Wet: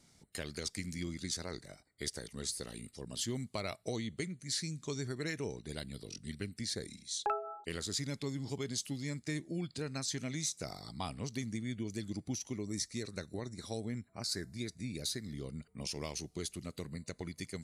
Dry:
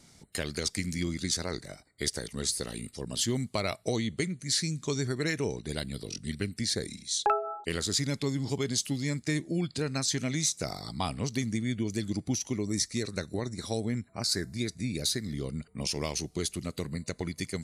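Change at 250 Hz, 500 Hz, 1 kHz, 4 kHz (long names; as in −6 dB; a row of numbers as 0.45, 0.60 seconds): −8.0, −8.0, −8.0, −8.0 decibels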